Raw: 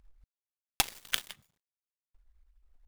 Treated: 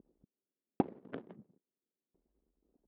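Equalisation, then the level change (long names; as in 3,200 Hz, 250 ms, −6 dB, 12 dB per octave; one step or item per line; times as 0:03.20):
dynamic equaliser 320 Hz, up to −4 dB, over −56 dBFS, Q 0.94
flat-topped band-pass 290 Hz, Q 1.2
high-frequency loss of the air 270 metres
+18.0 dB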